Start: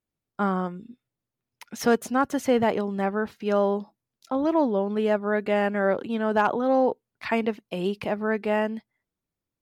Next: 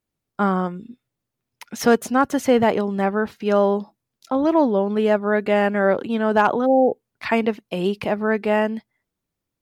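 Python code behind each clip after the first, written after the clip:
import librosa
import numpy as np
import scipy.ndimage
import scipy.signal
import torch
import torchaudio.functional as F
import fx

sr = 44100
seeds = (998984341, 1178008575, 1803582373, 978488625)

y = fx.spec_repair(x, sr, seeds[0], start_s=6.68, length_s=0.29, low_hz=840.0, high_hz=6800.0, source='after')
y = F.gain(torch.from_numpy(y), 5.0).numpy()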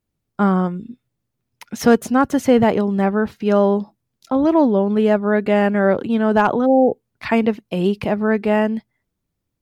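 y = fx.low_shelf(x, sr, hz=250.0, db=9.0)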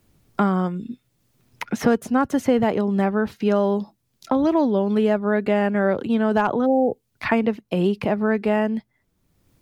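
y = fx.band_squash(x, sr, depth_pct=70)
y = F.gain(torch.from_numpy(y), -4.0).numpy()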